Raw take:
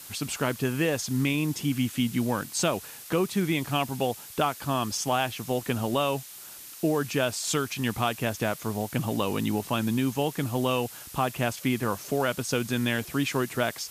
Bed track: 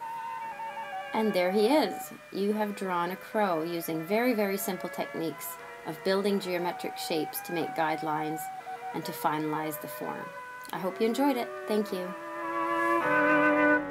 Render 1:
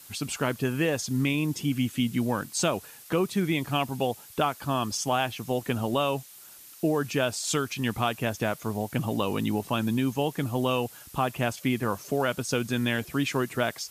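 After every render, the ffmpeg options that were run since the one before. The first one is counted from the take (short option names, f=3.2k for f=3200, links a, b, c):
-af "afftdn=nr=6:nf=-44"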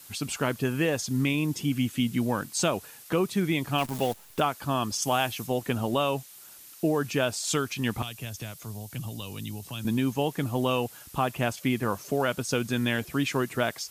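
-filter_complex "[0:a]asettb=1/sr,asplit=3[a][b][c];[a]atrim=end=3.784[d];[b]atrim=start=3.78:end=4.4,asetpts=PTS-STARTPTS,afade=t=in:d=0.004:c=qsin,afade=t=out:st=0.616:d=0.004:c=qsin,acrusher=bits=7:dc=4:mix=0:aa=0.000001[e];[c]atrim=start=4.396[f];[d][e]acrossfade=d=0.004:c1=hsin:c2=qsin[g];[g][f]acrossfade=d=0.004:c1=qsin:c2=hsin,asettb=1/sr,asplit=3[h][i][j];[h]atrim=end=5.024[k];[i]atrim=start=5.02:end=5.47,asetpts=PTS-STARTPTS,afade=t=in:d=0.004:c=qsin,afade=t=out:st=0.446:d=0.004:c=qsin,highshelf=f=4.9k:g=7[l];[j]atrim=start=5.466[m];[k][l]acrossfade=d=0.004:c1=hsin:c2=qsin[n];[n][m]acrossfade=d=0.004:c1=qsin:c2=hsin,asettb=1/sr,asplit=3[o][p][q];[o]atrim=end=8.024[r];[p]atrim=start=8.02:end=9.85,asetpts=PTS-STARTPTS,afade=t=in:d=0.004:c=qsin,afade=t=out:st=1.826:d=0.004:c=qsin,acrossover=split=130|3000[s][t][u];[t]acompressor=threshold=-46dB:ratio=3:attack=3.2:release=140:knee=2.83:detection=peak[v];[s][v][u]amix=inputs=3:normalize=0[w];[q]atrim=start=9.846[x];[r][w]acrossfade=d=0.004:c1=hsin:c2=qsin[y];[y][x]acrossfade=d=0.004:c1=qsin:c2=hsin"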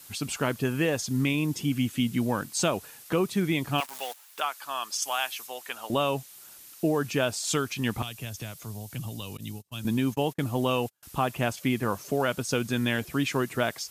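-filter_complex "[0:a]asettb=1/sr,asplit=3[a][b][c];[a]atrim=end=3.804[d];[b]atrim=start=3.8:end=5.9,asetpts=PTS-STARTPTS,afade=t=in:d=0.004:c=qsin,afade=t=out:st=2.096:d=0.004:c=qsin,highpass=970[e];[c]atrim=start=5.896[f];[d][e]acrossfade=d=0.004:c1=hsin:c2=qsin[g];[g][f]acrossfade=d=0.004:c1=qsin:c2=hsin,asettb=1/sr,asplit=3[h][i][j];[h]atrim=end=9.374[k];[i]atrim=start=9.37:end=11.03,asetpts=PTS-STARTPTS,afade=t=in:d=0.004:c=qsin,afade=t=out:st=1.656:d=0.004:c=qsin,agate=range=-34dB:threshold=-37dB:ratio=16:release=100:detection=peak[l];[j]atrim=start=11.026[m];[k][l]acrossfade=d=0.004:c1=hsin:c2=qsin[n];[n][m]acrossfade=d=0.004:c1=qsin:c2=hsin"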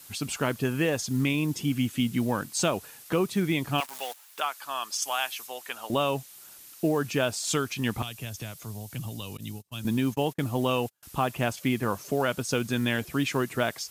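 -af "acrusher=bits=8:mode=log:mix=0:aa=0.000001"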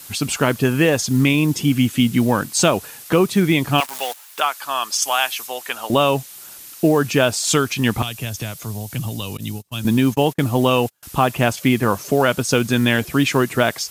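-af "volume=10dB,alimiter=limit=-3dB:level=0:latency=1"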